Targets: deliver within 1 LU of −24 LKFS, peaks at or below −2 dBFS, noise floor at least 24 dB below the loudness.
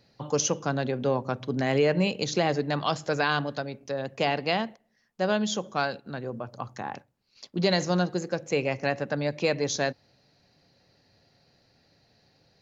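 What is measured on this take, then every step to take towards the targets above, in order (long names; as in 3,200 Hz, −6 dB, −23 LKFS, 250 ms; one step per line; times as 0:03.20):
integrated loudness −28.0 LKFS; sample peak −10.5 dBFS; target loudness −24.0 LKFS
→ level +4 dB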